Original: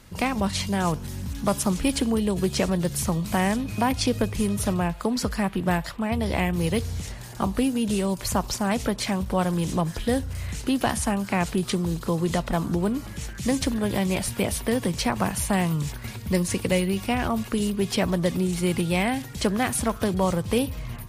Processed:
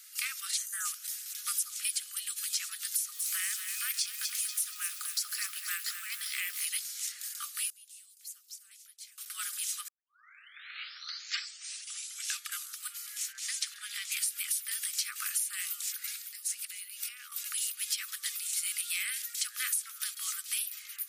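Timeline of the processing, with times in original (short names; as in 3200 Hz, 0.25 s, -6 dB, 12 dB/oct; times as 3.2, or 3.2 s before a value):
0.58–0.85 spectral gain 2000–5800 Hz -14 dB
2.91–6.65 lo-fi delay 0.238 s, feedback 55%, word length 7-bit, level -9.5 dB
7.7–9.18 passive tone stack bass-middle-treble 10-0-1
9.88 tape start 2.89 s
13.32–14.12 air absorption 52 m
16.19–17.32 compressor 12:1, threshold -31 dBFS
whole clip: Chebyshev high-pass 1200 Hz, order 8; differentiator; compressor 12:1, threshold -35 dBFS; gain +6.5 dB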